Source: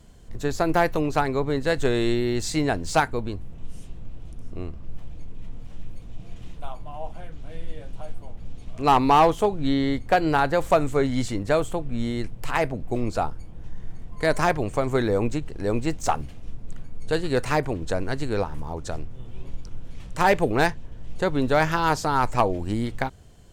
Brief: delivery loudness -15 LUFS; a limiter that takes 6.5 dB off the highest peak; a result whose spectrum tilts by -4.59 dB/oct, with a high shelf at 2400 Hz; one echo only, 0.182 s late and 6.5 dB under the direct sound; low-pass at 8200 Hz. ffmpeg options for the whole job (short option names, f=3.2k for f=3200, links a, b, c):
-af "lowpass=8.2k,highshelf=f=2.4k:g=-7,alimiter=limit=-16.5dB:level=0:latency=1,aecho=1:1:182:0.473,volume=12.5dB"